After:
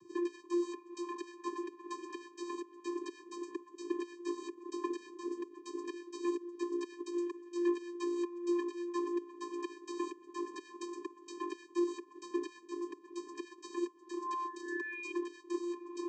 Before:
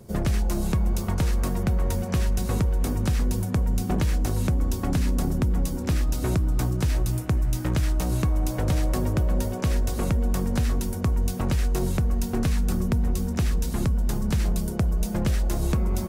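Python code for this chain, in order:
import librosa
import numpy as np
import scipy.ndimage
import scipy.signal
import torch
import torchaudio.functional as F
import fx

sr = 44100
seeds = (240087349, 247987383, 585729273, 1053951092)

y = fx.peak_eq(x, sr, hz=410.0, db=-10.5, octaves=0.93)
y = fx.over_compress(y, sr, threshold_db=-25.0, ratio=-0.5)
y = fx.spec_paint(y, sr, seeds[0], shape='rise', start_s=13.93, length_s=1.19, low_hz=610.0, high_hz=2600.0, level_db=-36.0)
y = fx.vocoder(y, sr, bands=16, carrier='square', carrier_hz=348.0)
y = y * 10.0 ** (-7.5 / 20.0)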